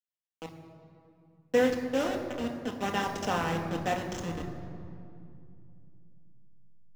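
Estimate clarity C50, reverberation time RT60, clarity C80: 7.0 dB, 2.5 s, 7.5 dB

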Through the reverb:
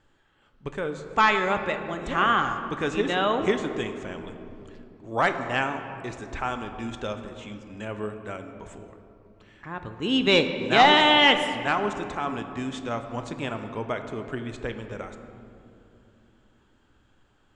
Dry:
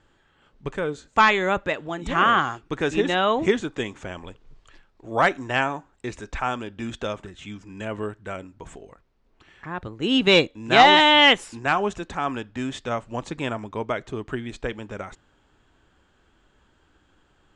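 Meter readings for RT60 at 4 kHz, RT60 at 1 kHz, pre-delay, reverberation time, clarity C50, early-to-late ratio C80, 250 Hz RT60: 1.3 s, 2.6 s, 4 ms, 2.9 s, 8.5 dB, 9.0 dB, 4.2 s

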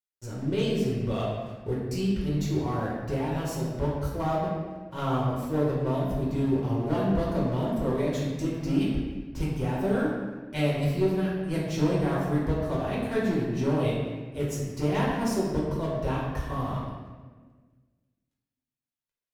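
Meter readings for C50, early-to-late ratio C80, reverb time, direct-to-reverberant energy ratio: 0.5 dB, 2.0 dB, 1.4 s, -6.5 dB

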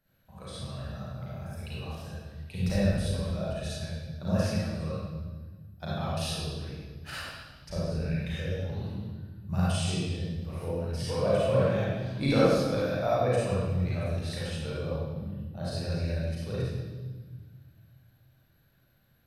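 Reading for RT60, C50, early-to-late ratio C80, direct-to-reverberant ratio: 1.4 s, -5.0 dB, -1.0 dB, -9.0 dB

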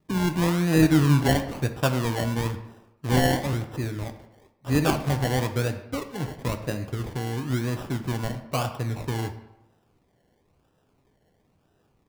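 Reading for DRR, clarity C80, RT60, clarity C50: 6.5 dB, 12.5 dB, 0.95 s, 10.5 dB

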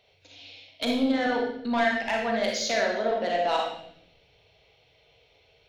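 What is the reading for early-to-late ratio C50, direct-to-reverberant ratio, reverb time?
1.5 dB, -1.0 dB, 0.80 s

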